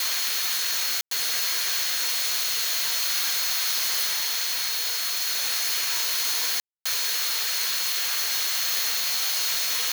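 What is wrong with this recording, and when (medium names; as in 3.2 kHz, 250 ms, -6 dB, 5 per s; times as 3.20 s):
whine 4.3 kHz -31 dBFS
1.01–1.11 s: dropout 103 ms
6.60–6.86 s: dropout 255 ms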